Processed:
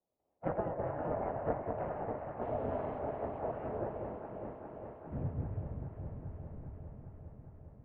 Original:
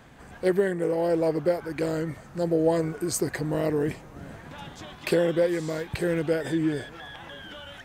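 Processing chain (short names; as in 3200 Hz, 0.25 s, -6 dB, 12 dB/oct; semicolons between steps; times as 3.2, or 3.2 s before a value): regenerating reverse delay 0.166 s, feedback 82%, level -12.5 dB; gate with hold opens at -26 dBFS; spectral gate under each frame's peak -25 dB weak; low shelf 150 Hz +11 dB; in parallel at -4.5 dB: sample-and-hold 23×; on the sum: low-pass sweep 790 Hz -> 160 Hz, 3.44–6.29; 2.42–2.99 requantised 10-bit, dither triangular; on a send: echo with dull and thin repeats by turns 0.202 s, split 1100 Hz, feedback 86%, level -5 dB; on the sum: mistuned SSB -140 Hz 190–2900 Hz; gain +2.5 dB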